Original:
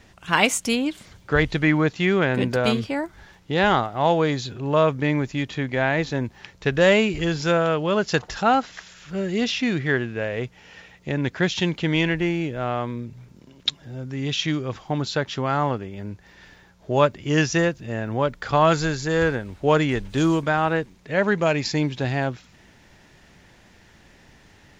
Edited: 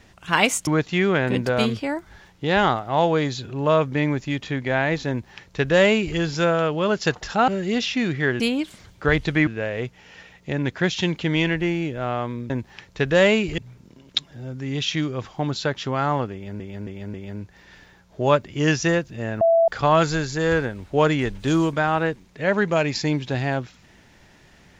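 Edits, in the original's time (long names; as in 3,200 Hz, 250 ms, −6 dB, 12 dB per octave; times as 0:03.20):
0:00.67–0:01.74: move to 0:10.06
0:06.16–0:07.24: duplicate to 0:13.09
0:08.55–0:09.14: remove
0:15.84–0:16.11: repeat, 4 plays
0:18.11–0:18.38: beep over 665 Hz −13 dBFS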